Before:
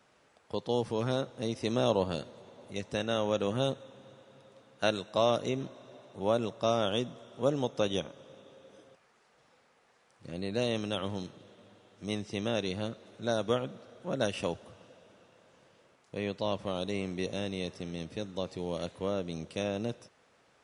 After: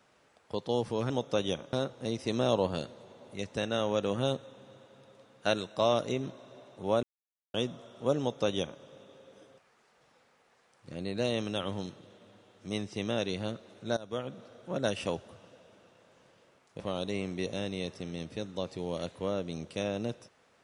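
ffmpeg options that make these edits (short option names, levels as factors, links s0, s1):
-filter_complex "[0:a]asplit=7[s0][s1][s2][s3][s4][s5][s6];[s0]atrim=end=1.102[s7];[s1]atrim=start=7.558:end=8.192[s8];[s2]atrim=start=1.098:end=6.4,asetpts=PTS-STARTPTS,afade=t=out:st=5.298:d=0.004:c=hsin[s9];[s3]atrim=start=6.4:end=6.91,asetpts=PTS-STARTPTS,volume=0[s10];[s4]atrim=start=6.91:end=13.34,asetpts=PTS-STARTPTS,afade=t=in:d=0.004:c=hsin,afade=t=out:st=6.426:d=0.004:c=hsin:silence=0.112202[s11];[s5]atrim=start=13.34:end=16.172,asetpts=PTS-STARTPTS,afade=t=in:d=0.46:silence=0.112202[s12];[s6]atrim=start=16.598[s13];[s7][s8]acrossfade=d=0.004:c1=hsin:c2=hsin[s14];[s9][s10][s11][s12]concat=n=4:v=0:a=1[s15];[s14][s15]acrossfade=d=0.004:c1=hsin:c2=hsin[s16];[s16][s13]acrossfade=d=0.004:c1=hsin:c2=hsin"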